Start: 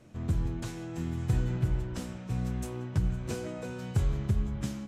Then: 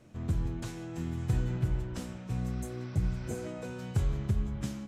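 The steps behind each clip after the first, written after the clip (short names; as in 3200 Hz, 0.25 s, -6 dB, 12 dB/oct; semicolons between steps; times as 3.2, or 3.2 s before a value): spectral repair 2.49–3.4, 840–6000 Hz both; gain -1.5 dB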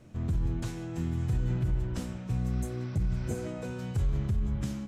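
low shelf 170 Hz +6 dB; limiter -22.5 dBFS, peak gain reduction 8 dB; gain +1 dB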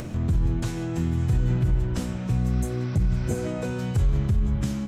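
upward compressor, threshold -30 dBFS; gain +6.5 dB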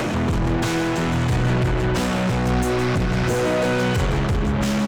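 overdrive pedal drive 33 dB, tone 2700 Hz, clips at -14 dBFS; on a send: echo 0.162 s -10 dB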